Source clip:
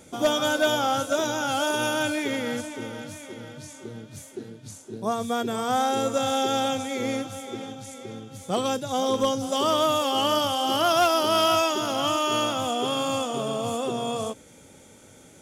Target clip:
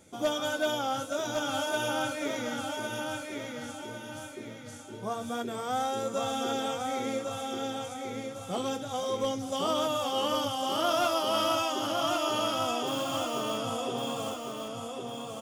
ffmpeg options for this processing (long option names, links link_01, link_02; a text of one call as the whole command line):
ffmpeg -i in.wav -filter_complex "[0:a]flanger=delay=9.4:depth=8.6:regen=-45:speed=0.33:shape=sinusoidal,asettb=1/sr,asplit=3[link_01][link_02][link_03];[link_01]atrim=end=12.874[link_04];[link_02]atrim=start=12.87:end=13.58,asetpts=PTS-STARTPTS,afade=type=in:duration=0.004:curve=qsin,afade=type=out:start_time=0.706:duration=0.004:curve=qsin,acrusher=bits=3:mode=log:mix=0:aa=0.000001[link_05];[link_03]atrim=start=13.576[link_06];[link_04][link_05]acrossfade=duration=0.004:curve1=hsin:curve2=qsin[link_07];[link_07][link_06]acrossfade=duration=0.004:curve1=qsin:curve2=hsin,asplit=2[link_08][link_09];[link_09]aecho=0:1:1105|2210|3315|4420|5525:0.631|0.246|0.096|0.0374|0.0146[link_10];[link_08][link_10]amix=inputs=2:normalize=0,volume=-3.5dB" out.wav